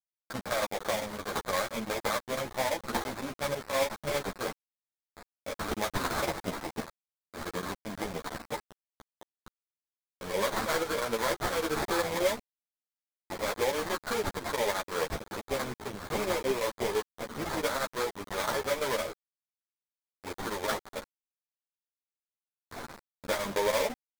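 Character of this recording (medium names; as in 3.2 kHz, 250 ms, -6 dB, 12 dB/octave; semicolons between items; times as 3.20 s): aliases and images of a low sample rate 2.8 kHz, jitter 20%; chopped level 5.9 Hz, depth 65%, duty 85%; a quantiser's noise floor 6-bit, dither none; a shimmering, thickened sound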